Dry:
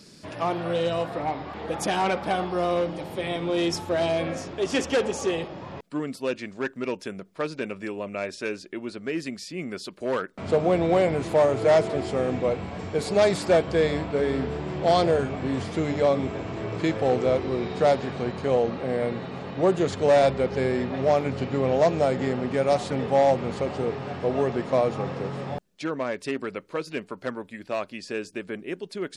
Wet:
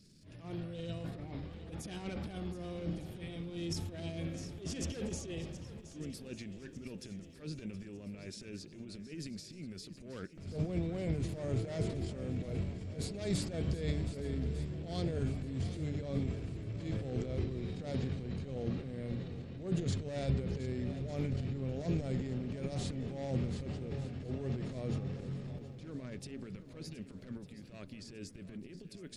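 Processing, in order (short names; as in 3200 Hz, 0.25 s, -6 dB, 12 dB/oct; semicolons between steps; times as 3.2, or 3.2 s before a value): transient shaper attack -11 dB, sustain +9 dB; passive tone stack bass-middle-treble 10-0-1; swung echo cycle 1.201 s, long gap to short 1.5:1, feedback 47%, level -14 dB; gain +6 dB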